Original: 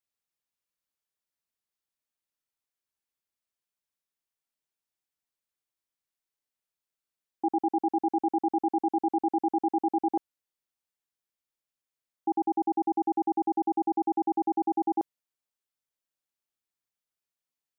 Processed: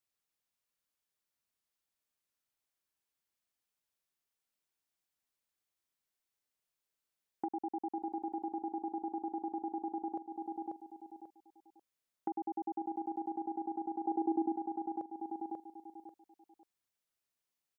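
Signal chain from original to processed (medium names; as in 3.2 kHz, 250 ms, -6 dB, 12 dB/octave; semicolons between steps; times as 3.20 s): feedback delay 540 ms, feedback 24%, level -12.5 dB; compression, threshold -37 dBFS, peak gain reduction 13.5 dB; 14.04–14.55 s: peaking EQ 600 Hz -> 220 Hz +9.5 dB 1.3 oct; trim +1 dB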